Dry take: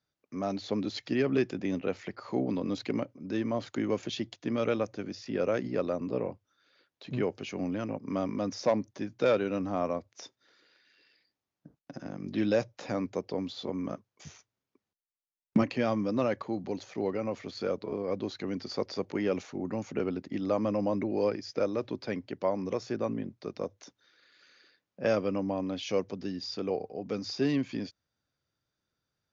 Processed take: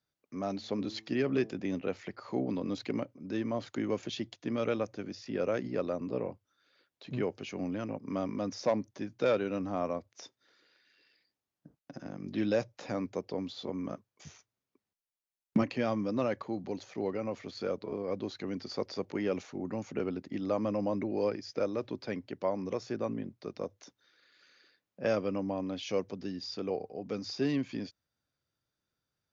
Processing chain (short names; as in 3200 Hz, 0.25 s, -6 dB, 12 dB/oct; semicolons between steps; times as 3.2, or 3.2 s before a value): 0.55–1.53 de-hum 109.5 Hz, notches 11; gain -2.5 dB